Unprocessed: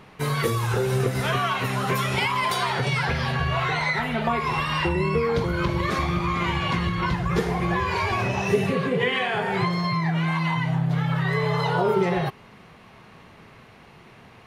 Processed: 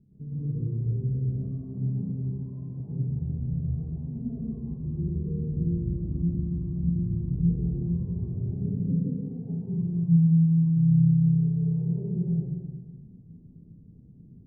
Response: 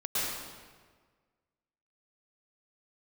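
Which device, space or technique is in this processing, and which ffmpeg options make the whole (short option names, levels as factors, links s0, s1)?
club heard from the street: -filter_complex "[0:a]alimiter=limit=0.133:level=0:latency=1:release=196,lowpass=f=250:w=0.5412,lowpass=f=250:w=1.3066[s0];[1:a]atrim=start_sample=2205[s1];[s0][s1]afir=irnorm=-1:irlink=0,volume=0.562"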